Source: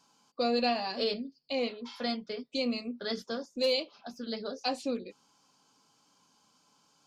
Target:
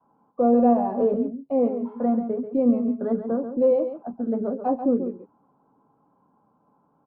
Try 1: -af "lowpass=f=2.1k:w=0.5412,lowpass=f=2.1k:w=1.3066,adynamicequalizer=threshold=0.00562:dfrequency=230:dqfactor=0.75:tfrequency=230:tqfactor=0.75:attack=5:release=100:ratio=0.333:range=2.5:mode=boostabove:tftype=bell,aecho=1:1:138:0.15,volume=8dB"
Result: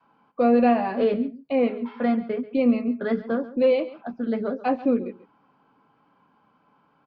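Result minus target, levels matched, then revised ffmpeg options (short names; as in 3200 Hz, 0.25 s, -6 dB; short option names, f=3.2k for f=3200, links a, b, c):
2000 Hz band +17.5 dB; echo-to-direct -7.5 dB
-af "lowpass=f=1k:w=0.5412,lowpass=f=1k:w=1.3066,adynamicequalizer=threshold=0.00562:dfrequency=230:dqfactor=0.75:tfrequency=230:tqfactor=0.75:attack=5:release=100:ratio=0.333:range=2.5:mode=boostabove:tftype=bell,aecho=1:1:138:0.355,volume=8dB"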